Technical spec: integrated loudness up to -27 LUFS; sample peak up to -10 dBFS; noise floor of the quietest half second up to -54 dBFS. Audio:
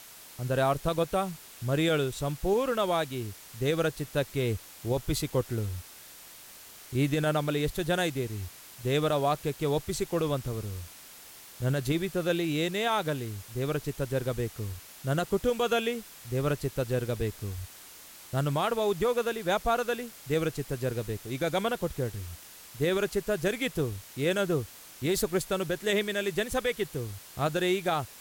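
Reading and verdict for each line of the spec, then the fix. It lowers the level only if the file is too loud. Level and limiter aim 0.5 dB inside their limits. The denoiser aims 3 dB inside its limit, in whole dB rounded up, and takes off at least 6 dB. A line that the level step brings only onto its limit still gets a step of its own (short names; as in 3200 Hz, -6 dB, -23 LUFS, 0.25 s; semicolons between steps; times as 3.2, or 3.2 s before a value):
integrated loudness -30.0 LUFS: OK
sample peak -15.0 dBFS: OK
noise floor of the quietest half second -49 dBFS: fail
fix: denoiser 8 dB, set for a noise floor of -49 dBFS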